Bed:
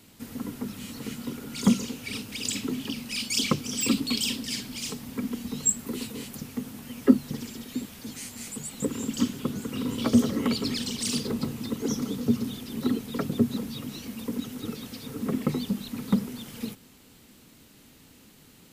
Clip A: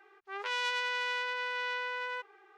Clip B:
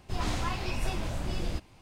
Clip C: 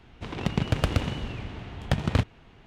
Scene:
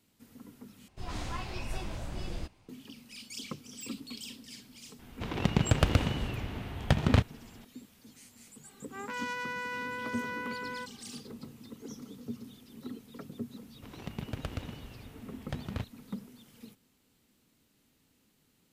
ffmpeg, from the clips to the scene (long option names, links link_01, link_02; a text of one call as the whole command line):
ffmpeg -i bed.wav -i cue0.wav -i cue1.wav -i cue2.wav -filter_complex "[3:a]asplit=2[link_01][link_02];[0:a]volume=-16dB[link_03];[2:a]dynaudnorm=framelen=120:gausssize=5:maxgain=3dB[link_04];[1:a]equalizer=frequency=3400:width=1.5:gain=-13[link_05];[link_03]asplit=2[link_06][link_07];[link_06]atrim=end=0.884[link_08];[link_04]atrim=end=1.81,asetpts=PTS-STARTPTS,volume=-8.5dB[link_09];[link_07]atrim=start=2.686[link_10];[link_01]atrim=end=2.66,asetpts=PTS-STARTPTS,volume=-0.5dB,afade=type=in:duration=0.004:curve=hsin,afade=type=out:start_time=2.656:duration=0.004:curve=hsin,adelay=4990[link_11];[link_05]atrim=end=2.57,asetpts=PTS-STARTPTS,volume=-1dB,afade=type=in:duration=0.004:curve=hsin,afade=type=out:start_time=2.566:duration=0.004:curve=hsin,adelay=8640[link_12];[link_02]atrim=end=2.66,asetpts=PTS-STARTPTS,volume=-13.5dB,afade=type=in:duration=0.004:curve=hsin,afade=type=out:start_time=2.656:duration=0.004:curve=hsin,adelay=13610[link_13];[link_08][link_09]acrossfade=duration=0.004:curve1=hsin:curve2=hsin[link_14];[link_14][link_10]acrossfade=duration=0.004:curve1=hsin:curve2=hsin[link_15];[link_15][link_11][link_12][link_13]amix=inputs=4:normalize=0" out.wav